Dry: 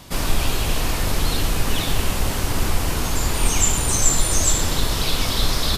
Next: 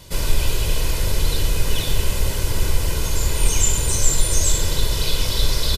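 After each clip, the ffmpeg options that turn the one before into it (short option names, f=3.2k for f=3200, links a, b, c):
-af "equalizer=f=1.1k:t=o:w=1.6:g=-6.5,aecho=1:1:2:0.55,volume=-1dB"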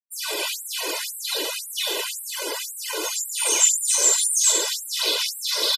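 -af "afftfilt=real='re*gte(hypot(re,im),0.0316)':imag='im*gte(hypot(re,im),0.0316)':win_size=1024:overlap=0.75,afftfilt=real='re*gte(b*sr/1024,280*pow(7700/280,0.5+0.5*sin(2*PI*1.9*pts/sr)))':imag='im*gte(b*sr/1024,280*pow(7700/280,0.5+0.5*sin(2*PI*1.9*pts/sr)))':win_size=1024:overlap=0.75,volume=4dB"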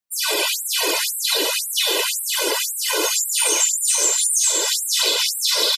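-af "acompressor=threshold=-24dB:ratio=6,aecho=1:1:524|1048|1572|2096|2620:0.316|0.155|0.0759|0.0372|0.0182,volume=8dB"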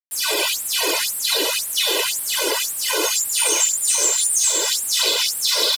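-af "acrusher=bits=5:mix=0:aa=0.000001"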